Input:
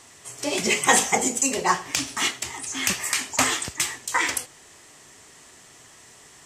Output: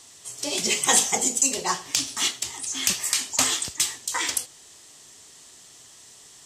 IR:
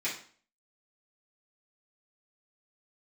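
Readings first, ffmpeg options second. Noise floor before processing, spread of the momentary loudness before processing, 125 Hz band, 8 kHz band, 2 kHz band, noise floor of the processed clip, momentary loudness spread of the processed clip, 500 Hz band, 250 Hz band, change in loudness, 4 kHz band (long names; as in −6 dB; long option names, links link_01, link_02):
−50 dBFS, 12 LU, −5.0 dB, +2.0 dB, −6.0 dB, −50 dBFS, 11 LU, −5.0 dB, −5.0 dB, 0.0 dB, +2.0 dB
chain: -af "highshelf=frequency=2800:width_type=q:width=1.5:gain=6.5,volume=-5dB"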